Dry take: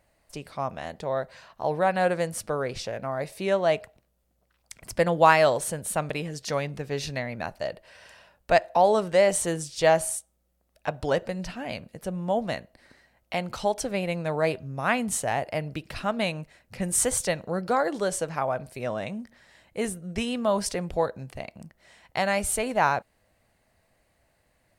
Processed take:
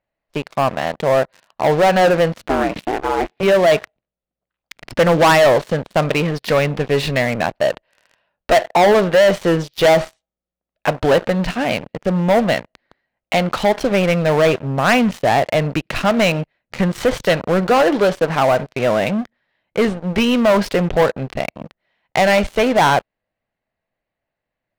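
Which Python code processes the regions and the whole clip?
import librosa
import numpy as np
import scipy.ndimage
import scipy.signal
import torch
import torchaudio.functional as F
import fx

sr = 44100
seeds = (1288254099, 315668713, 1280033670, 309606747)

y = fx.chain(x, sr, fx.lowpass(hz=2800.0, slope=12),
    fx.ring_mod(carrier_hz=190.0), at=(2.49, 3.43))
y = scipy.signal.sosfilt(scipy.signal.butter(4, 3800.0, 'lowpass', fs=sr, output='sos'), y)
y = fx.leveller(y, sr, passes=5)
y = fx.peak_eq(y, sr, hz=68.0, db=-10.0, octaves=1.0)
y = y * librosa.db_to_amplitude(-2.5)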